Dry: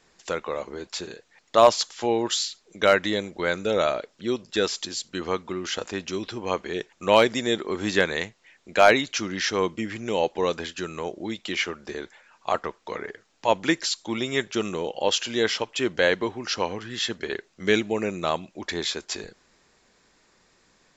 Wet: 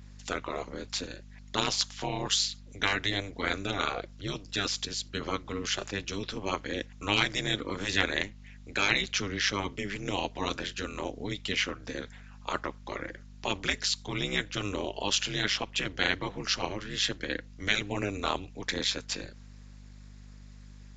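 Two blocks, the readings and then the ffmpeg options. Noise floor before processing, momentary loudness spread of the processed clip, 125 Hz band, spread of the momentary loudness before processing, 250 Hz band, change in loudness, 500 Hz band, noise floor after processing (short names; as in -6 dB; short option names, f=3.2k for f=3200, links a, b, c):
-64 dBFS, 10 LU, 0.0 dB, 14 LU, -7.0 dB, -5.5 dB, -13.0 dB, -49 dBFS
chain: -filter_complex "[0:a]afftfilt=real='re*lt(hypot(re,im),0.398)':imag='im*lt(hypot(re,im),0.398)':win_size=1024:overlap=0.75,equalizer=f=600:t=o:w=2.7:g=-5.5,acrossover=split=170[a][b];[a]alimiter=level_in=17.5dB:limit=-24dB:level=0:latency=1:release=362,volume=-17.5dB[c];[c][b]amix=inputs=2:normalize=0,aeval=exprs='val(0)*sin(2*PI*100*n/s)':c=same,aeval=exprs='val(0)+0.00282*(sin(2*PI*50*n/s)+sin(2*PI*2*50*n/s)/2+sin(2*PI*3*50*n/s)/3+sin(2*PI*4*50*n/s)/4+sin(2*PI*5*50*n/s)/5)':c=same,aresample=16000,aresample=44100,adynamicequalizer=threshold=0.00501:dfrequency=4900:dqfactor=0.7:tfrequency=4900:tqfactor=0.7:attack=5:release=100:ratio=0.375:range=4:mode=cutabove:tftype=highshelf,volume=3.5dB"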